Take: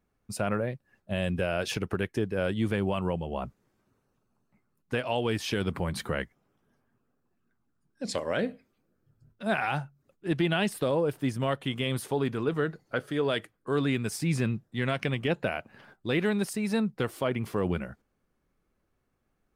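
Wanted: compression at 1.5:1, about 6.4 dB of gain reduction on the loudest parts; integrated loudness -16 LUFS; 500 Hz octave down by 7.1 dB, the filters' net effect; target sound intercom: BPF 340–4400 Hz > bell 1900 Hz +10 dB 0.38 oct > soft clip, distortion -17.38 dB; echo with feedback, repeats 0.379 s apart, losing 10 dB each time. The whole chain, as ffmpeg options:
-af "equalizer=f=500:t=o:g=-7.5,acompressor=threshold=-43dB:ratio=1.5,highpass=340,lowpass=4.4k,equalizer=f=1.9k:t=o:w=0.38:g=10,aecho=1:1:379|758|1137|1516:0.316|0.101|0.0324|0.0104,asoftclip=threshold=-26.5dB,volume=24dB"

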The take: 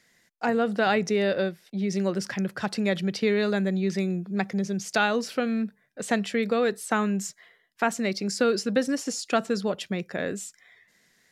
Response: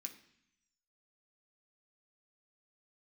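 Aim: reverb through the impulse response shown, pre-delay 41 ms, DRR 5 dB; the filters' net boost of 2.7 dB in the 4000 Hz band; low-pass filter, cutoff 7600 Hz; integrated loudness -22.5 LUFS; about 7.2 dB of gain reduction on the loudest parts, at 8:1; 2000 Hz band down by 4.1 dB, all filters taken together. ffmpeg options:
-filter_complex "[0:a]lowpass=7.6k,equalizer=f=2k:t=o:g=-7,equalizer=f=4k:t=o:g=5.5,acompressor=threshold=-26dB:ratio=8,asplit=2[a][b];[1:a]atrim=start_sample=2205,adelay=41[c];[b][c]afir=irnorm=-1:irlink=0,volume=0dB[d];[a][d]amix=inputs=2:normalize=0,volume=7.5dB"

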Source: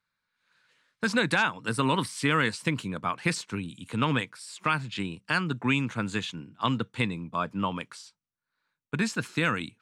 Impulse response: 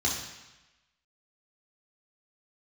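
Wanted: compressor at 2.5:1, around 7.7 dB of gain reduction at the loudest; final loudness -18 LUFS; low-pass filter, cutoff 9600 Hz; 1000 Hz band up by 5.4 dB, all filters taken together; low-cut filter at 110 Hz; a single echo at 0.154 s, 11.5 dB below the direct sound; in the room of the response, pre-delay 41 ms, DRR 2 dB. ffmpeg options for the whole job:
-filter_complex "[0:a]highpass=110,lowpass=9.6k,equalizer=f=1k:t=o:g=6.5,acompressor=threshold=-29dB:ratio=2.5,aecho=1:1:154:0.266,asplit=2[a][b];[1:a]atrim=start_sample=2205,adelay=41[c];[b][c]afir=irnorm=-1:irlink=0,volume=-11dB[d];[a][d]amix=inputs=2:normalize=0,volume=11.5dB"

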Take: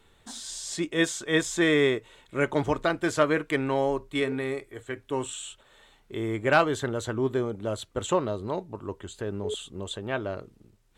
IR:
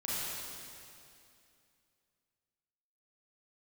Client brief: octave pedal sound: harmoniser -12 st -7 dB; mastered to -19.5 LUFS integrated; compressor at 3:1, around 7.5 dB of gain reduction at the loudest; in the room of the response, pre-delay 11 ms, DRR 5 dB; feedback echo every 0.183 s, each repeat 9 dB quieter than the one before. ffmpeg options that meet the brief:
-filter_complex "[0:a]acompressor=threshold=-26dB:ratio=3,aecho=1:1:183|366|549|732:0.355|0.124|0.0435|0.0152,asplit=2[a][b];[1:a]atrim=start_sample=2205,adelay=11[c];[b][c]afir=irnorm=-1:irlink=0,volume=-10dB[d];[a][d]amix=inputs=2:normalize=0,asplit=2[e][f];[f]asetrate=22050,aresample=44100,atempo=2,volume=-7dB[g];[e][g]amix=inputs=2:normalize=0,volume=10.5dB"

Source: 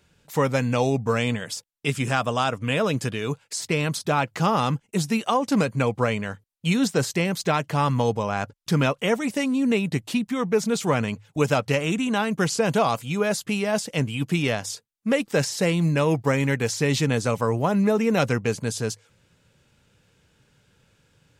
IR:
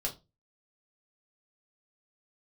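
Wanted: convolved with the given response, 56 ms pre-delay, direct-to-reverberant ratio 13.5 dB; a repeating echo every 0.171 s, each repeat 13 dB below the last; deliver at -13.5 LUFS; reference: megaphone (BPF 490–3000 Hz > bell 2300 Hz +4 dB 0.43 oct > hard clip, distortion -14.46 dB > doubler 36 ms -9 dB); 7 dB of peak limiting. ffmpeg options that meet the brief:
-filter_complex "[0:a]alimiter=limit=-15dB:level=0:latency=1,aecho=1:1:171|342|513:0.224|0.0493|0.0108,asplit=2[a][b];[1:a]atrim=start_sample=2205,adelay=56[c];[b][c]afir=irnorm=-1:irlink=0,volume=-16dB[d];[a][d]amix=inputs=2:normalize=0,highpass=490,lowpass=3k,equalizer=f=2.3k:t=o:w=0.43:g=4,asoftclip=type=hard:threshold=-22dB,asplit=2[e][f];[f]adelay=36,volume=-9dB[g];[e][g]amix=inputs=2:normalize=0,volume=16.5dB"

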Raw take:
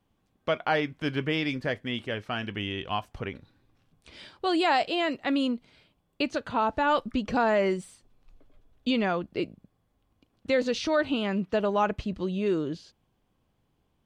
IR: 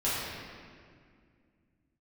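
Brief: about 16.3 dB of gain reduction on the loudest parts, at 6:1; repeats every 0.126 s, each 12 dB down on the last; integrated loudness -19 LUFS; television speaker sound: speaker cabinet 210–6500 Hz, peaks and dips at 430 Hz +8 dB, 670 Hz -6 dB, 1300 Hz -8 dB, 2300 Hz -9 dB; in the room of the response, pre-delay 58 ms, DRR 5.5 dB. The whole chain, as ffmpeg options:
-filter_complex "[0:a]acompressor=threshold=-38dB:ratio=6,aecho=1:1:126|252|378:0.251|0.0628|0.0157,asplit=2[a][b];[1:a]atrim=start_sample=2205,adelay=58[c];[b][c]afir=irnorm=-1:irlink=0,volume=-15.5dB[d];[a][d]amix=inputs=2:normalize=0,highpass=f=210:w=0.5412,highpass=f=210:w=1.3066,equalizer=f=430:t=q:w=4:g=8,equalizer=f=670:t=q:w=4:g=-6,equalizer=f=1.3k:t=q:w=4:g=-8,equalizer=f=2.3k:t=q:w=4:g=-9,lowpass=f=6.5k:w=0.5412,lowpass=f=6.5k:w=1.3066,volume=21.5dB"

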